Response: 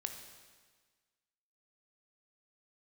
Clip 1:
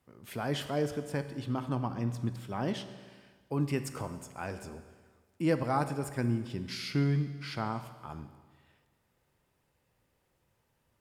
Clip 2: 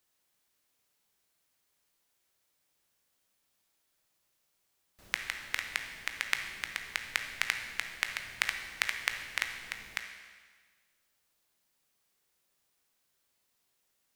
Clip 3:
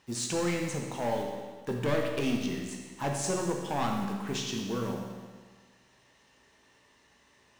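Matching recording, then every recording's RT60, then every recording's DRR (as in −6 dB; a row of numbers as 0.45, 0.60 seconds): 2; 1.5, 1.5, 1.5 seconds; 9.5, 5.0, 0.5 decibels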